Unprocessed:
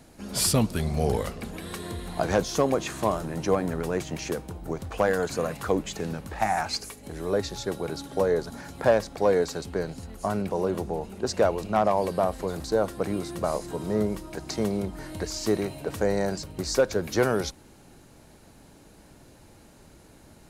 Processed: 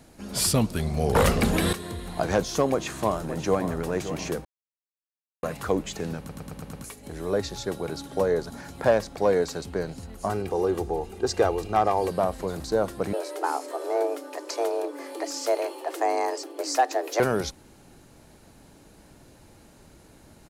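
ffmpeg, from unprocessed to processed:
ffmpeg -i in.wav -filter_complex "[0:a]asettb=1/sr,asplit=3[link_01][link_02][link_03];[link_01]atrim=end=1.154[link_04];[link_02]atrim=start=1.15:end=1.73,asetpts=PTS-STARTPTS,afade=type=in:duration=0.004:curve=qsin,afade=type=out:start_time=0.576:duration=0.004:curve=qsin,aeval=exprs='0.2*sin(PI/2*3.55*val(0)/0.2)':channel_layout=same[link_05];[link_03]atrim=start=1.726[link_06];[link_04][link_05]acrossfade=duration=0.004:curve1=hsin:curve2=qsin[link_07];[link_07][link_06]acrossfade=duration=0.004:curve1=qsin:curve2=hsin,asplit=2[link_08][link_09];[link_09]afade=type=in:start_time=2.71:duration=0.01,afade=type=out:start_time=3.8:duration=0.01,aecho=0:1:570|1140|1710|2280:0.281838|0.0986434|0.0345252|0.0120838[link_10];[link_08][link_10]amix=inputs=2:normalize=0,asettb=1/sr,asplit=3[link_11][link_12][link_13];[link_11]atrim=end=10.294[link_14];[link_12]atrim=start=10.29:end=12.1,asetpts=PTS-STARTPTS,afade=type=in:duration=0.004:curve=qsin,afade=type=out:start_time=1.806:duration=0.004:curve=qsin,aecho=1:1:2.5:0.58,atrim=end_sample=79821[link_15];[link_13]atrim=start=12.096[link_16];[link_14][link_15]acrossfade=duration=0.004:curve1=hsin:curve2=qsin[link_17];[link_17][link_16]acrossfade=duration=0.004:curve1=qsin:curve2=hsin,asettb=1/sr,asplit=3[link_18][link_19][link_20];[link_18]atrim=end=13.134[link_21];[link_19]atrim=start=13.13:end=17.2,asetpts=PTS-STARTPTS,afade=type=in:duration=0.004:curve=qsin,afade=type=out:start_time=4.066:duration=0.004:curve=qsin,afreqshift=240[link_22];[link_20]atrim=start=17.196[link_23];[link_21][link_22]acrossfade=duration=0.004:curve1=hsin:curve2=qsin[link_24];[link_24][link_23]acrossfade=duration=0.004:curve1=qsin:curve2=hsin,asplit=9[link_25][link_26][link_27][link_28][link_29][link_30][link_31][link_32][link_33];[link_25]atrim=end=4.45,asetpts=PTS-STARTPTS,afade=type=out:start_time=4.446:duration=0.004:curve=hsin[link_34];[link_26]atrim=start=4.45:end=5.43,asetpts=PTS-STARTPTS,volume=0[link_35];[link_27]atrim=start=5.43:end=6.292,asetpts=PTS-STARTPTS,afade=type=in:duration=0.004:curve=hsin[link_36];[link_28]atrim=start=6.178:end=6.292[link_37];[link_29]atrim=start=6.178:end=6.292[link_38];[link_30]atrim=start=6.178:end=6.292[link_39];[link_31]atrim=start=6.178:end=6.292[link_40];[link_32]atrim=start=6.178:end=6.292[link_41];[link_33]atrim=start=6.838[link_42];[link_34][link_35][link_36]concat=n=3:v=0:a=1[link_43];[link_43][link_37]acrossfade=duration=0.004:curve1=hsin:curve2=hsin[link_44];[link_44][link_38]acrossfade=duration=0.004:curve1=hsin:curve2=hsin[link_45];[link_45][link_39]acrossfade=duration=0.004:curve1=hsin:curve2=hsin[link_46];[link_46][link_40]acrossfade=duration=0.004:curve1=hsin:curve2=hsin[link_47];[link_47][link_41]acrossfade=duration=0.004:curve1=hsin:curve2=hsin[link_48];[link_48][link_42]acrossfade=duration=0.004:curve1=hsin:curve2=hsin" out.wav

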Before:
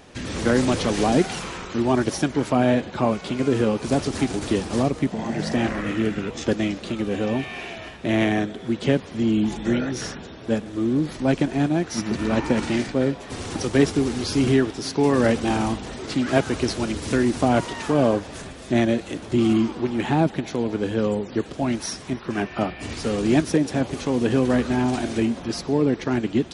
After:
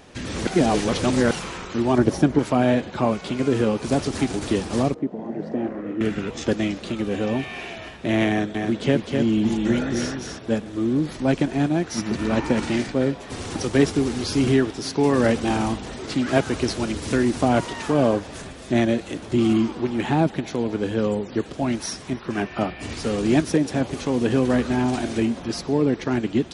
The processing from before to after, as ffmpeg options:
ffmpeg -i in.wav -filter_complex "[0:a]asettb=1/sr,asplit=3[link_01][link_02][link_03];[link_01]atrim=end=1.984[link_04];[link_02]atrim=start=1.98:end=2.39,asetpts=PTS-STARTPTS,afade=type=in:duration=0.004:curve=qsin,afade=type=out:start_time=0.406:duration=0.004:curve=qsin,tiltshelf=frequency=1200:gain=6[link_05];[link_03]atrim=start=2.386[link_06];[link_04][link_05]acrossfade=duration=0.004:curve1=hsin:curve2=qsin[link_07];[link_07][link_06]acrossfade=duration=0.004:curve1=qsin:curve2=hsin,asettb=1/sr,asplit=3[link_08][link_09][link_10];[link_08]atrim=end=4.944[link_11];[link_09]atrim=start=4.94:end=6.01,asetpts=PTS-STARTPTS,afade=type=in:duration=0.004:curve=qsin,afade=type=out:start_time=1.066:duration=0.004:curve=qsin,bandpass=frequency=380:width_type=q:width=1.2[link_12];[link_10]atrim=start=6.006[link_13];[link_11][link_12]acrossfade=duration=0.004:curve1=hsin:curve2=qsin[link_14];[link_14][link_13]acrossfade=duration=0.004:curve1=qsin:curve2=hsin,asettb=1/sr,asplit=3[link_15][link_16][link_17];[link_15]atrim=end=8.294[link_18];[link_16]atrim=start=8.29:end=10.39,asetpts=PTS-STARTPTS,afade=type=in:duration=0.004:curve=qsin,afade=type=out:start_time=2.096:duration=0.004:curve=qsin,aecho=1:1:255:0.596,atrim=end_sample=92610[link_19];[link_17]atrim=start=10.386[link_20];[link_18][link_19]acrossfade=duration=0.004:curve1=hsin:curve2=qsin[link_21];[link_21][link_20]acrossfade=duration=0.004:curve1=qsin:curve2=hsin,asplit=3[link_22][link_23][link_24];[link_22]atrim=end=0.472[link_25];[link_23]atrim=start=0.468:end=1.312,asetpts=PTS-STARTPTS,areverse[link_26];[link_24]atrim=start=1.308[link_27];[link_25][link_26]acrossfade=duration=0.004:curve1=hsin:curve2=hsin[link_28];[link_28][link_27]acrossfade=duration=0.004:curve1=hsin:curve2=hsin" out.wav

